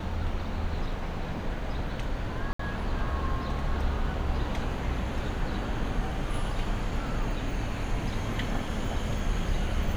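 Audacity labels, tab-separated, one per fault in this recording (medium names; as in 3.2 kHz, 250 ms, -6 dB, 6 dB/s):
2.530000	2.590000	dropout 64 ms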